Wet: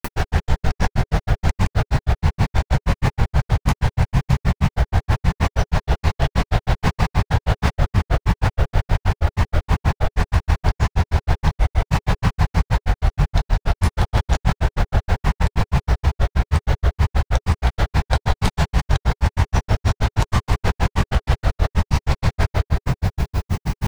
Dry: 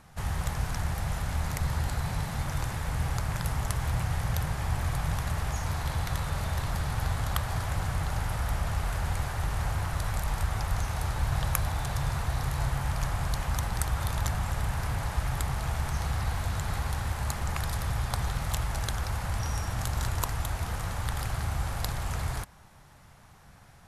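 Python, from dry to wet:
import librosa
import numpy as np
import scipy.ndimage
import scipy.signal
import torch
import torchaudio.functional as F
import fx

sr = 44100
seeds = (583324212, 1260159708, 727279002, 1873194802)

p1 = scipy.signal.sosfilt(scipy.signal.butter(2, 5500.0, 'lowpass', fs=sr, output='sos'), x)
p2 = fx.peak_eq(p1, sr, hz=1200.0, db=-8.5, octaves=0.25)
p3 = fx.room_shoebox(p2, sr, seeds[0], volume_m3=190.0, walls='hard', distance_m=1.0)
p4 = fx.rider(p3, sr, range_db=5, speed_s=0.5)
p5 = p3 + (p4 * 10.0 ** (0.5 / 20.0))
p6 = fx.dmg_noise_colour(p5, sr, seeds[1], colour='violet', level_db=-52.0)
p7 = p6 + fx.echo_wet_highpass(p6, sr, ms=364, feedback_pct=73, hz=3800.0, wet_db=-9.5, dry=0)
p8 = fx.granulator(p7, sr, seeds[2], grain_ms=87.0, per_s=6.3, spray_ms=100.0, spread_st=3)
p9 = fx.peak_eq(p8, sr, hz=420.0, db=4.5, octaves=0.4)
p10 = fx.env_flatten(p9, sr, amount_pct=70)
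y = p10 * 10.0 ** (-2.0 / 20.0)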